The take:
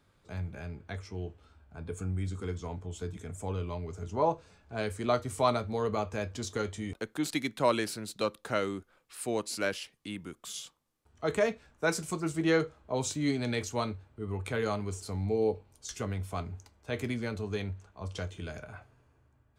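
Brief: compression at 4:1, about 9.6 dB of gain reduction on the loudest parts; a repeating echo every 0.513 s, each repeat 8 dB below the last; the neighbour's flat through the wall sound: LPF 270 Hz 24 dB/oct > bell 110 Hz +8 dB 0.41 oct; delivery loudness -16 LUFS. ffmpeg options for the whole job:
-af "acompressor=threshold=-33dB:ratio=4,lowpass=f=270:w=0.5412,lowpass=f=270:w=1.3066,equalizer=f=110:t=o:w=0.41:g=8,aecho=1:1:513|1026|1539|2052|2565:0.398|0.159|0.0637|0.0255|0.0102,volume=24dB"

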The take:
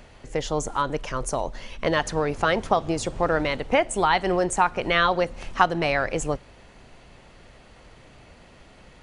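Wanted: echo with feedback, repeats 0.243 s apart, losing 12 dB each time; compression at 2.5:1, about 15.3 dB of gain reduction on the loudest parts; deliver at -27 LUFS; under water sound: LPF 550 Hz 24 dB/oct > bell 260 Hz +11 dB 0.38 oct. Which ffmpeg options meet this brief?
-af "acompressor=threshold=-38dB:ratio=2.5,lowpass=f=550:w=0.5412,lowpass=f=550:w=1.3066,equalizer=f=260:t=o:w=0.38:g=11,aecho=1:1:243|486|729:0.251|0.0628|0.0157,volume=12dB"

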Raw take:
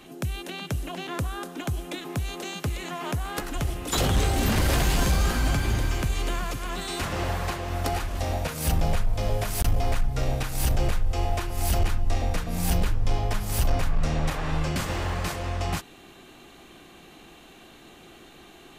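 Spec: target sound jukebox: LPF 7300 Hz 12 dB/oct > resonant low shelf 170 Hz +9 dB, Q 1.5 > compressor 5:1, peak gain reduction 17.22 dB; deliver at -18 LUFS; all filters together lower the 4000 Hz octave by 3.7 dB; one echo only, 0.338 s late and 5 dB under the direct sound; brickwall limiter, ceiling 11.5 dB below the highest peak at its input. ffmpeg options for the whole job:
-af "equalizer=f=4k:t=o:g=-4.5,alimiter=level_in=2dB:limit=-24dB:level=0:latency=1,volume=-2dB,lowpass=7.3k,lowshelf=f=170:t=q:w=1.5:g=9,aecho=1:1:338:0.562,acompressor=threshold=-35dB:ratio=5,volume=22.5dB"

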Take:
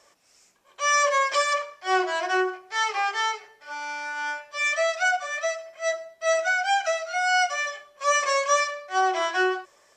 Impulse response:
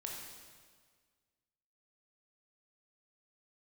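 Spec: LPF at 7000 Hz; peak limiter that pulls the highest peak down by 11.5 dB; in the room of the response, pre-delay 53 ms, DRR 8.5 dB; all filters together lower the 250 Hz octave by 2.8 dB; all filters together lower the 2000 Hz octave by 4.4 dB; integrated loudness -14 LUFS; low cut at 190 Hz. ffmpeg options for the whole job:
-filter_complex "[0:a]highpass=190,lowpass=7k,equalizer=f=250:t=o:g=-5.5,equalizer=f=2k:t=o:g=-6,alimiter=limit=-23.5dB:level=0:latency=1,asplit=2[a][b];[1:a]atrim=start_sample=2205,adelay=53[c];[b][c]afir=irnorm=-1:irlink=0,volume=-7.5dB[d];[a][d]amix=inputs=2:normalize=0,volume=17.5dB"

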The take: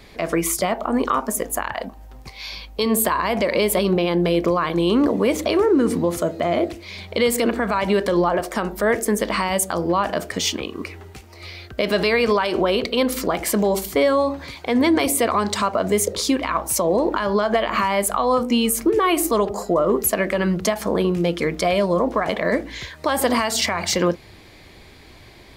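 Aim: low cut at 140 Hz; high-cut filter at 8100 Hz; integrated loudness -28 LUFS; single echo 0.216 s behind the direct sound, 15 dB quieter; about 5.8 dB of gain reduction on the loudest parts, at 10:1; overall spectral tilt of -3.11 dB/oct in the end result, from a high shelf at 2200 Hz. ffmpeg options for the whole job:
-af "highpass=140,lowpass=8.1k,highshelf=f=2.2k:g=5.5,acompressor=threshold=-19dB:ratio=10,aecho=1:1:216:0.178,volume=-4dB"

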